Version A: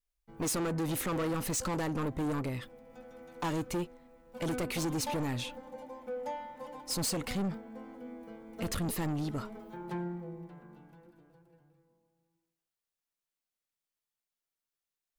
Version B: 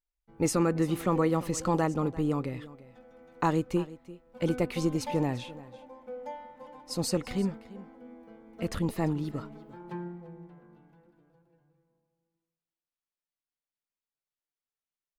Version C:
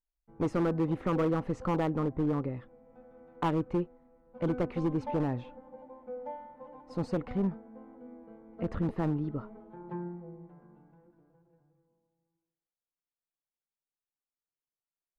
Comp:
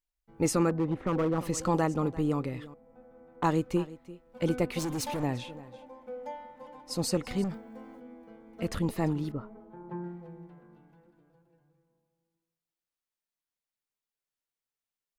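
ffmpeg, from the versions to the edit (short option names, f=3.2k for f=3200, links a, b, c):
-filter_complex "[2:a]asplit=3[a][b][c];[0:a]asplit=2[d][e];[1:a]asplit=6[f][g][h][i][j][k];[f]atrim=end=0.702[l];[a]atrim=start=0.698:end=1.382[m];[g]atrim=start=1.378:end=2.742[n];[b]atrim=start=2.738:end=3.442[o];[h]atrim=start=3.438:end=4.792[p];[d]atrim=start=4.788:end=5.232[q];[i]atrim=start=5.228:end=7.442[r];[e]atrim=start=7.438:end=8.002[s];[j]atrim=start=7.998:end=9.322[t];[c]atrim=start=9.318:end=10.042[u];[k]atrim=start=10.038[v];[l][m]acrossfade=d=0.004:c1=hsin:c2=hsin[w];[w][n]acrossfade=d=0.004:c1=hsin:c2=hsin[x];[x][o]acrossfade=d=0.004:c1=hsin:c2=hsin[y];[y][p]acrossfade=d=0.004:c1=hsin:c2=hsin[z];[z][q]acrossfade=d=0.004:c1=hsin:c2=hsin[aa];[aa][r]acrossfade=d=0.004:c1=hsin:c2=hsin[ab];[ab][s]acrossfade=d=0.004:c1=hsin:c2=hsin[ac];[ac][t]acrossfade=d=0.004:c1=hsin:c2=hsin[ad];[ad][u]acrossfade=d=0.004:c1=hsin:c2=hsin[ae];[ae][v]acrossfade=d=0.004:c1=hsin:c2=hsin"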